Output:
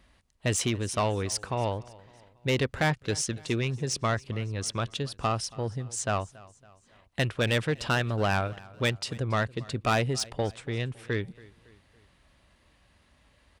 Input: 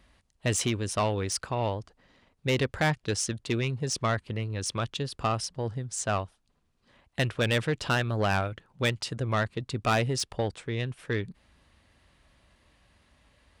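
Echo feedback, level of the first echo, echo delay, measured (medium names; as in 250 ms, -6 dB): 49%, -22.0 dB, 279 ms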